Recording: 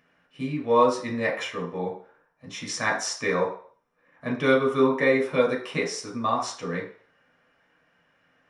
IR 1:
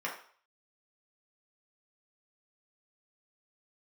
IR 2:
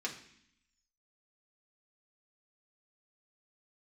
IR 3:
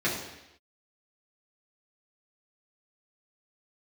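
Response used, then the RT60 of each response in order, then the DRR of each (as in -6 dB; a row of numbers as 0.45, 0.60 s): 1; 0.50, 0.65, 0.90 s; -3.5, -2.0, -8.0 dB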